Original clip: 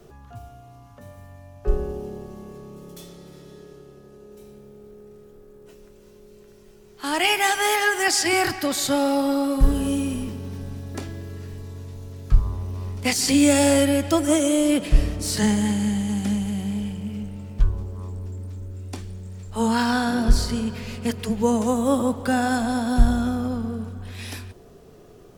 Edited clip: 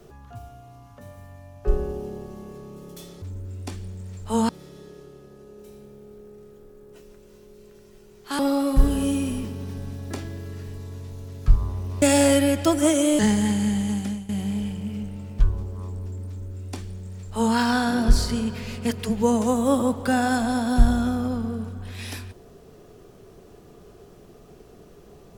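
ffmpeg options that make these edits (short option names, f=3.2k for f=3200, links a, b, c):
-filter_complex "[0:a]asplit=7[a][b][c][d][e][f][g];[a]atrim=end=3.222[h];[b]atrim=start=18.478:end=19.752[i];[c]atrim=start=3.218:end=7.122[j];[d]atrim=start=9.228:end=12.862[k];[e]atrim=start=13.478:end=14.652[l];[f]atrim=start=15.388:end=16.49,asetpts=PTS-STARTPTS,afade=t=out:st=0.712:d=0.39:silence=0.141254[m];[g]atrim=start=16.49,asetpts=PTS-STARTPTS,afade=t=in:d=0.004:c=hsin:silence=0.141254[n];[h][i]acrossfade=d=0.004:c1=hsin:c2=hsin[o];[o][j]acrossfade=d=0.004:c1=hsin:c2=hsin[p];[p][k]acrossfade=d=0.004:c1=hsin:c2=hsin[q];[q][l]acrossfade=d=0.004:c1=hsin:c2=hsin[r];[m][n]concat=n=2:v=0:a=1[s];[r][s]acrossfade=d=0.004:c1=hsin:c2=hsin"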